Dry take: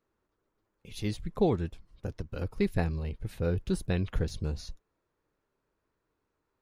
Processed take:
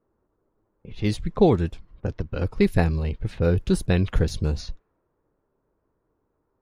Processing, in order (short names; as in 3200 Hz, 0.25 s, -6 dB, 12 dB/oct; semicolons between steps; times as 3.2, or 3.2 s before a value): low-pass opened by the level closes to 940 Hz, open at -27.5 dBFS; gain +8.5 dB